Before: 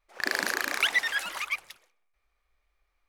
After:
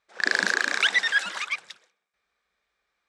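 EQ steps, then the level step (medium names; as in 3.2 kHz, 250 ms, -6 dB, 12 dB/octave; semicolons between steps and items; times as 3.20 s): cabinet simulation 130–8500 Hz, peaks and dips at 190 Hz +9 dB, 460 Hz +4 dB, 1.6 kHz +8 dB, 3.7 kHz +7 dB, 5.4 kHz +4 dB, 7.8 kHz +5 dB; 0.0 dB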